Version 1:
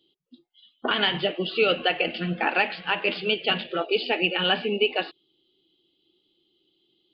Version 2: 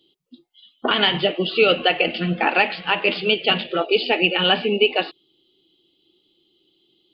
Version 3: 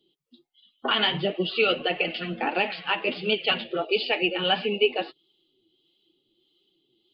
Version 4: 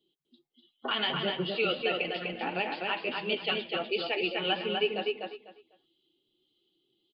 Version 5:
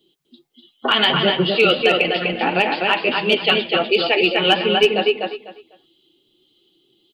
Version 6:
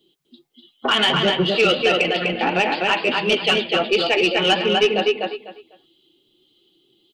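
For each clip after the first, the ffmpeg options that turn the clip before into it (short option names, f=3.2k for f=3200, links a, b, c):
-af "equalizer=f=1.6k:w=5.5:g=-4.5,volume=5.5dB"
-filter_complex "[0:a]flanger=delay=4.5:depth=4.8:regen=29:speed=1.5:shape=triangular,acrossover=split=610[a][b];[a]aeval=exprs='val(0)*(1-0.5/2+0.5/2*cos(2*PI*1.6*n/s))':c=same[c];[b]aeval=exprs='val(0)*(1-0.5/2-0.5/2*cos(2*PI*1.6*n/s))':c=same[d];[c][d]amix=inputs=2:normalize=0"
-filter_complex "[0:a]asplit=2[a][b];[b]adelay=249,lowpass=f=4.1k:p=1,volume=-3dB,asplit=2[c][d];[d]adelay=249,lowpass=f=4.1k:p=1,volume=0.22,asplit=2[e][f];[f]adelay=249,lowpass=f=4.1k:p=1,volume=0.22[g];[a][c][e][g]amix=inputs=4:normalize=0,volume=-7dB"
-af "asoftclip=type=hard:threshold=-19dB,acontrast=35,volume=8.5dB"
-af "asoftclip=type=tanh:threshold=-8.5dB"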